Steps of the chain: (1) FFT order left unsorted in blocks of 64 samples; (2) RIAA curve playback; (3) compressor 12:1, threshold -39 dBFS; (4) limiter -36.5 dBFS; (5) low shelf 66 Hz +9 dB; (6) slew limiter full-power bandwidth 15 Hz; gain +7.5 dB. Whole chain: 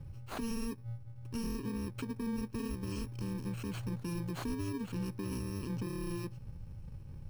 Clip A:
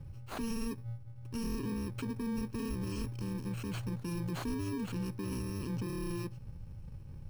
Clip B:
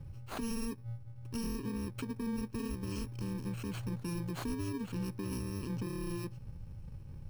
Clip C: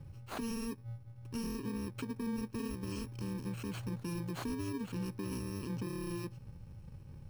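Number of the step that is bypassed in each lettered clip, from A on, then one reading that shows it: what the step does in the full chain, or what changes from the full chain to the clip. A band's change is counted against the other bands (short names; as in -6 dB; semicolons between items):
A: 3, mean gain reduction 5.0 dB; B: 6, distortion -24 dB; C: 5, 125 Hz band -2.0 dB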